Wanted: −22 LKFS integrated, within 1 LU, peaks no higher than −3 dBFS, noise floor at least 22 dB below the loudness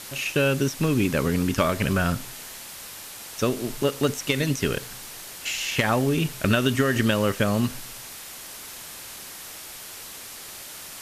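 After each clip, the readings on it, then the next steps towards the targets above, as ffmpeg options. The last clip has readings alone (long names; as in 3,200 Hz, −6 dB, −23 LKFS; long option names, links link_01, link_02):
background noise floor −40 dBFS; target noise floor −46 dBFS; integrated loudness −24.0 LKFS; sample peak −9.5 dBFS; target loudness −22.0 LKFS
→ -af "afftdn=noise_reduction=6:noise_floor=-40"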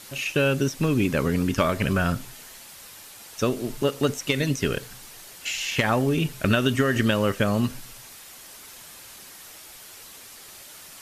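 background noise floor −45 dBFS; target noise floor −47 dBFS
→ -af "afftdn=noise_reduction=6:noise_floor=-45"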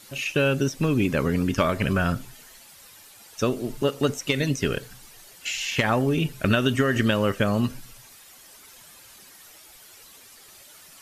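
background noise floor −50 dBFS; integrated loudness −24.5 LKFS; sample peak −9.0 dBFS; target loudness −22.0 LKFS
→ -af "volume=2.5dB"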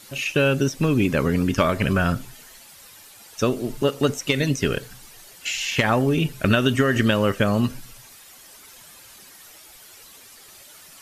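integrated loudness −22.0 LKFS; sample peak −6.5 dBFS; background noise floor −47 dBFS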